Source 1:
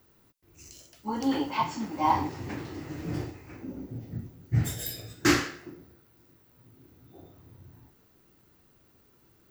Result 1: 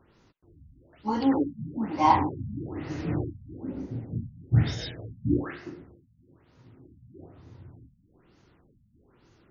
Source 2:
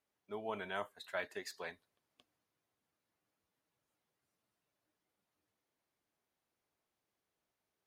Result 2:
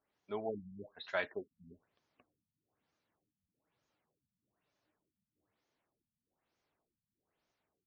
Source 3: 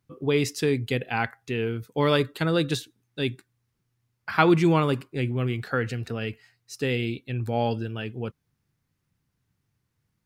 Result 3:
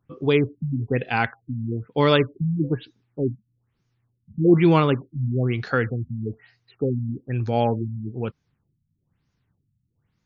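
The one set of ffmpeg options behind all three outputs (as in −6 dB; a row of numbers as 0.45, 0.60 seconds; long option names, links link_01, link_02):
-af "highshelf=frequency=8400:gain=5,afftfilt=real='re*lt(b*sr/1024,230*pow(7100/230,0.5+0.5*sin(2*PI*1.1*pts/sr)))':imag='im*lt(b*sr/1024,230*pow(7100/230,0.5+0.5*sin(2*PI*1.1*pts/sr)))':win_size=1024:overlap=0.75,volume=4dB"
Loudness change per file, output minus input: +2.0, +2.0, +3.0 LU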